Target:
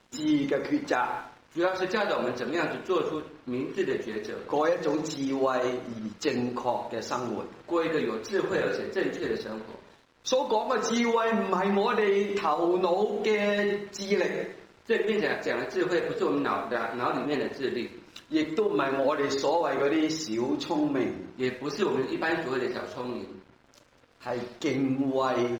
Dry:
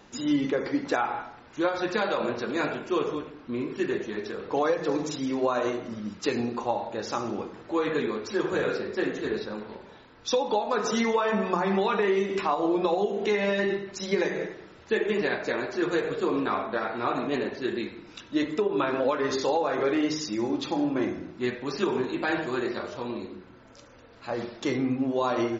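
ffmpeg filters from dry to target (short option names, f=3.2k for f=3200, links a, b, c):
-af "aeval=exprs='sgn(val(0))*max(abs(val(0))-0.00237,0)':c=same,asetrate=45392,aresample=44100,atempo=0.971532"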